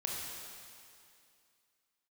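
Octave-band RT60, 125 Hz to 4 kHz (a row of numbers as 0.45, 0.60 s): 2.3, 2.5, 2.4, 2.5, 2.4, 2.4 s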